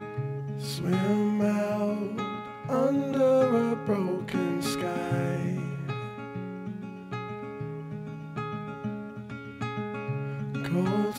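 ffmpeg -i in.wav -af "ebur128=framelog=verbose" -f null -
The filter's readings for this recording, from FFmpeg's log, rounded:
Integrated loudness:
  I:         -29.8 LUFS
  Threshold: -39.9 LUFS
Loudness range:
  LRA:        10.3 LU
  Threshold: -49.8 LUFS
  LRA low:   -36.9 LUFS
  LRA high:  -26.6 LUFS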